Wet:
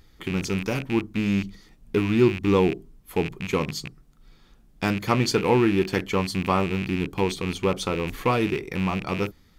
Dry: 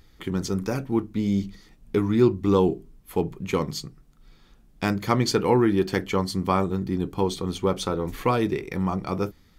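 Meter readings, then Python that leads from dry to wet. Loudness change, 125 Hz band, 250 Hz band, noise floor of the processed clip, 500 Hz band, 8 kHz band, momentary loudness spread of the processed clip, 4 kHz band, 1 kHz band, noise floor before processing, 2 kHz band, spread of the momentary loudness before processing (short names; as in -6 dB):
+0.5 dB, 0.0 dB, 0.0 dB, -56 dBFS, 0.0 dB, 0.0 dB, 9 LU, +2.0 dB, 0.0 dB, -56 dBFS, +5.5 dB, 9 LU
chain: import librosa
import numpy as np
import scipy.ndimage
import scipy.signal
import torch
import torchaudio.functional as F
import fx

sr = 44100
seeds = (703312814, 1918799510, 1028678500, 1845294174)

y = fx.rattle_buzz(x, sr, strikes_db=-31.0, level_db=-21.0)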